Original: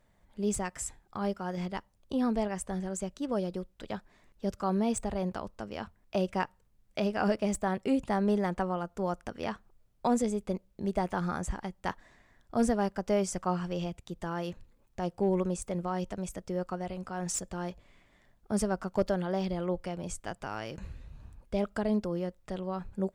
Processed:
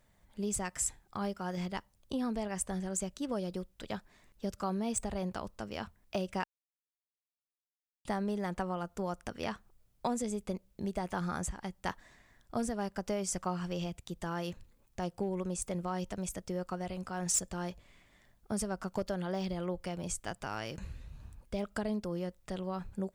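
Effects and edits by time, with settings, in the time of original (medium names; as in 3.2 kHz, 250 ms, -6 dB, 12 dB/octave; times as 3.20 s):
6.44–8.05 s: mute
whole clip: bass shelf 200 Hz +10.5 dB; compression 5:1, threshold -26 dBFS; tilt EQ +2 dB/octave; trim -1.5 dB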